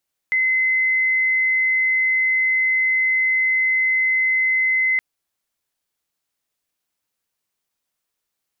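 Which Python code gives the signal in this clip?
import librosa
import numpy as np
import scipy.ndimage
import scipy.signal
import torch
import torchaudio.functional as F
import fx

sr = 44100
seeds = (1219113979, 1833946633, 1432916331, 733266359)

y = 10.0 ** (-15.5 / 20.0) * np.sin(2.0 * np.pi * (2050.0 * (np.arange(round(4.67 * sr)) / sr)))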